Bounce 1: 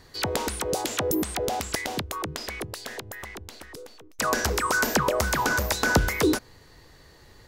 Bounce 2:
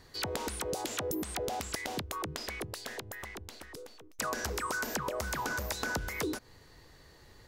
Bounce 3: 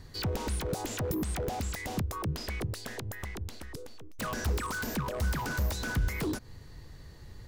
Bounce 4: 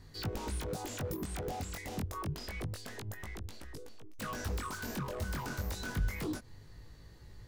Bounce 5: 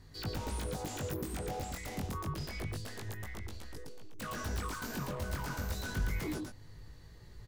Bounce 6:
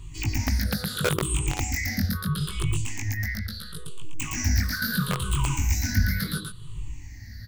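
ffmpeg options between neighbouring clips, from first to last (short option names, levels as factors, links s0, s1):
-af "acompressor=threshold=0.0447:ratio=6,volume=0.596"
-af "aeval=exprs='0.0299*(abs(mod(val(0)/0.0299+3,4)-2)-1)':c=same,bass=f=250:g=12,treble=f=4000:g=1"
-af "flanger=delay=18.5:depth=3.4:speed=0.28,volume=0.794"
-af "aecho=1:1:114:0.708,volume=0.841"
-filter_complex "[0:a]afftfilt=real='re*pow(10,22/40*sin(2*PI*(0.67*log(max(b,1)*sr/1024/100)/log(2)-(-0.74)*(pts-256)/sr)))':imag='im*pow(10,22/40*sin(2*PI*(0.67*log(max(b,1)*sr/1024/100)/log(2)-(-0.74)*(pts-256)/sr)))':win_size=1024:overlap=0.75,acrossover=split=290|1200[s0][s1][s2];[s1]acrusher=bits=4:mix=0:aa=0.000001[s3];[s0][s3][s2]amix=inputs=3:normalize=0,volume=2.82"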